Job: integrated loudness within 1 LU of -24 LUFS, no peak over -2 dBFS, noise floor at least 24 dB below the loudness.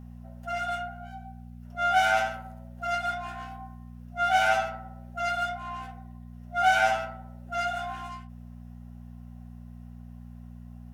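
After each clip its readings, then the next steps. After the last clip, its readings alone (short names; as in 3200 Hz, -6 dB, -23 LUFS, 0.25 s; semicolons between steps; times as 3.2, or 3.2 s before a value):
hum 60 Hz; harmonics up to 240 Hz; hum level -41 dBFS; loudness -28.0 LUFS; peak -11.0 dBFS; loudness target -24.0 LUFS
-> de-hum 60 Hz, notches 4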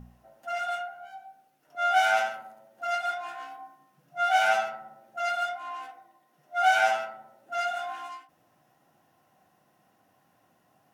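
hum none; loudness -28.0 LUFS; peak -11.0 dBFS; loudness target -24.0 LUFS
-> gain +4 dB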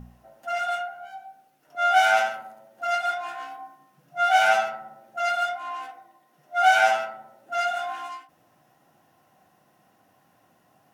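loudness -24.0 LUFS; peak -7.0 dBFS; noise floor -63 dBFS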